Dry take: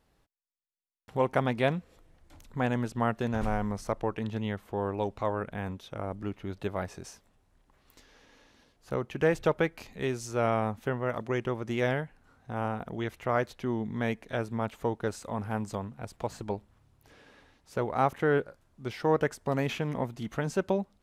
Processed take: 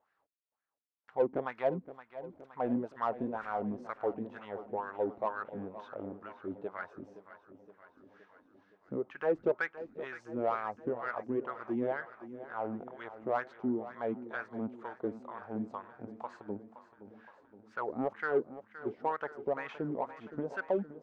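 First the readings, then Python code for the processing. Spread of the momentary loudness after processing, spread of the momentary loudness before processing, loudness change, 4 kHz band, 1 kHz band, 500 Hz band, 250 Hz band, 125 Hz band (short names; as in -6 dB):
13 LU, 10 LU, -5.5 dB, under -15 dB, -4.5 dB, -4.5 dB, -5.0 dB, -15.5 dB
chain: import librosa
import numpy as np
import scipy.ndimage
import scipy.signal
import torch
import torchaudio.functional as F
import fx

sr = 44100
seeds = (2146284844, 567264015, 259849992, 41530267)

p1 = scipy.signal.sosfilt(scipy.signal.butter(2, 7800.0, 'lowpass', fs=sr, output='sos'), x)
p2 = fx.wah_lfo(p1, sr, hz=2.1, low_hz=250.0, high_hz=1600.0, q=3.5)
p3 = 10.0 ** (-30.5 / 20.0) * np.tanh(p2 / 10.0 ** (-30.5 / 20.0))
p4 = p2 + F.gain(torch.from_numpy(p3), -5.0).numpy()
y = fx.echo_feedback(p4, sr, ms=519, feedback_pct=60, wet_db=-14.0)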